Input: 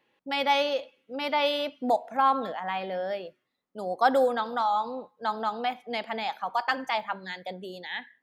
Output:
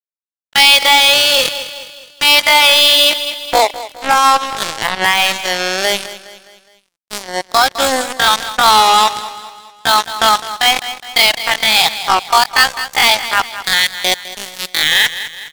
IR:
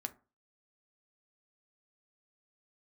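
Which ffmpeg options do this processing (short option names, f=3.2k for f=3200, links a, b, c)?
-af "acompressor=threshold=-24dB:ratio=12,bandpass=f=5.7k:t=q:w=0.93:csg=0,acrusher=bits=6:mix=0:aa=0.5,atempo=0.53,volume=33dB,asoftclip=hard,volume=-33dB,aecho=1:1:207|414|621|828:0.158|0.0745|0.035|0.0165,alimiter=level_in=35.5dB:limit=-1dB:release=50:level=0:latency=1,volume=-1dB"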